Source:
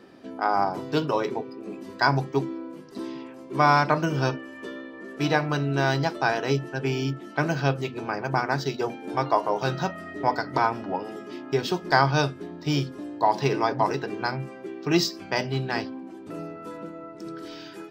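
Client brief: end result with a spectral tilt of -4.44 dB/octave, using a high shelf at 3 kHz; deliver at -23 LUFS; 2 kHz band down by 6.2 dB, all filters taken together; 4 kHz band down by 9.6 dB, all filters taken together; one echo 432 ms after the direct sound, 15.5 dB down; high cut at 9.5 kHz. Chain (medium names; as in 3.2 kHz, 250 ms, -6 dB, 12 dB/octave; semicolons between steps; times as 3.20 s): low-pass 9.5 kHz; peaking EQ 2 kHz -6 dB; treble shelf 3 kHz -7.5 dB; peaking EQ 4 kHz -4.5 dB; delay 432 ms -15.5 dB; trim +4.5 dB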